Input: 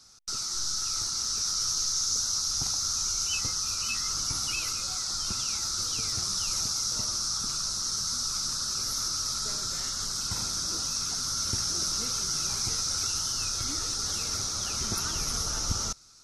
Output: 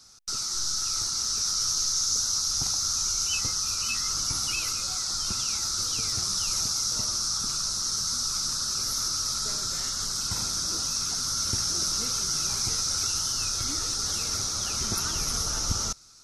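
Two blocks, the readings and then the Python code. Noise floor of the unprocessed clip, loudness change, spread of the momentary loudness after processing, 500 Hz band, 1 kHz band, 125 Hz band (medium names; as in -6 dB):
-33 dBFS, +2.0 dB, 3 LU, +1.5 dB, +1.5 dB, +1.5 dB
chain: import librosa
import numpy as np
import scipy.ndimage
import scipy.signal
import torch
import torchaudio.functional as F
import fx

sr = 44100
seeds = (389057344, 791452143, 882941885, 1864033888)

y = fx.high_shelf(x, sr, hz=11000.0, db=3.5)
y = F.gain(torch.from_numpy(y), 1.5).numpy()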